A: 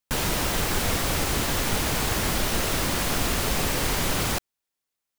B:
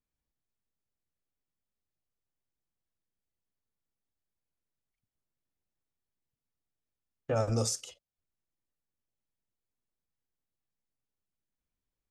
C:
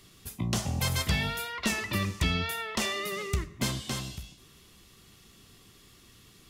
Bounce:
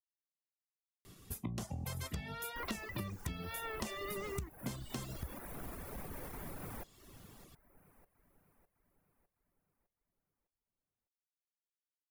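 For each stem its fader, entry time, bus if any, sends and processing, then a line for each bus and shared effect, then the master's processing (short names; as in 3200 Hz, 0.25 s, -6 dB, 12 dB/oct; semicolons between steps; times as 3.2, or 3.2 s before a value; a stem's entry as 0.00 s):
-11.0 dB, 2.45 s, bus A, no send, echo send -20.5 dB, band shelf 4900 Hz -12 dB
off
+1.5 dB, 1.05 s, no bus, no send, no echo send, dry
bus A: 0.0 dB, limiter -33.5 dBFS, peak gain reduction 10 dB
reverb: off
echo: feedback echo 0.606 s, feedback 51%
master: reverb removal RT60 0.84 s; bell 3500 Hz -8 dB 2.5 oct; compressor 20:1, threshold -37 dBFS, peak gain reduction 16 dB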